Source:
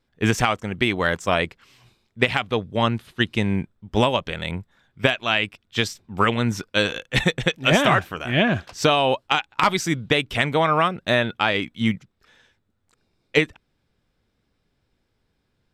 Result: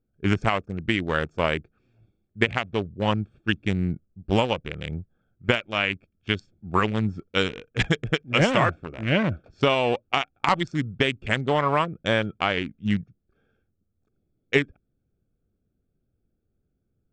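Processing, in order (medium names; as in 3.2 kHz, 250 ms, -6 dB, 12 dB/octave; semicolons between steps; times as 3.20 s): local Wiener filter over 41 samples; steep low-pass 9.7 kHz 48 dB/octave; speed mistake 48 kHz file played as 44.1 kHz; trim -2 dB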